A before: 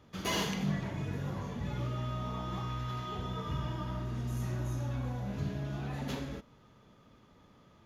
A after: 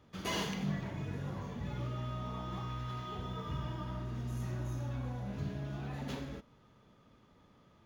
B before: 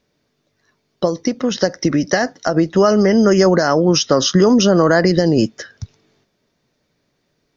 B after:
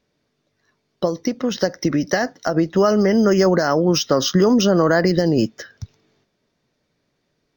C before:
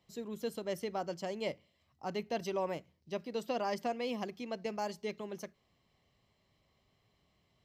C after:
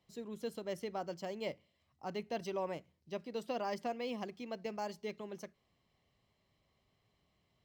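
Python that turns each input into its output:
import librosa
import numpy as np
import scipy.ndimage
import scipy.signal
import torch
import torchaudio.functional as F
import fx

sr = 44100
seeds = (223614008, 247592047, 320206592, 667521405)

y = np.interp(np.arange(len(x)), np.arange(len(x))[::2], x[::2])
y = y * librosa.db_to_amplitude(-3.0)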